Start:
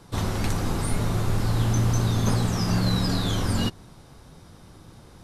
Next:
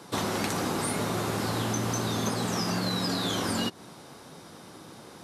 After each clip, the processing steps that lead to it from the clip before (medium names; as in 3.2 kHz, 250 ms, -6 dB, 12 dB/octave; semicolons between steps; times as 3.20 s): high-pass 230 Hz 12 dB/octave; compression, threshold -31 dBFS, peak gain reduction 8.5 dB; trim +5.5 dB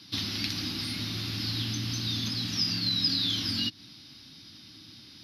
FFT filter 110 Hz 0 dB, 160 Hz -8 dB, 300 Hz -3 dB, 430 Hz -24 dB, 1 kHz -19 dB, 2.7 kHz +2 dB, 5.1 kHz +9 dB, 7.8 kHz -24 dB, 11 kHz -7 dB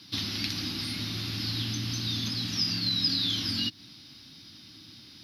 word length cut 12-bit, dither none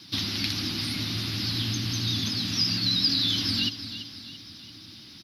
vibrato 11 Hz 57 cents; feedback delay 337 ms, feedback 48%, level -12 dB; trim +3 dB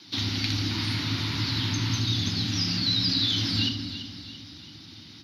painted sound noise, 0.70–2.00 s, 860–4600 Hz -40 dBFS; reverberation RT60 1.2 s, pre-delay 31 ms, DRR 6 dB; trim -5 dB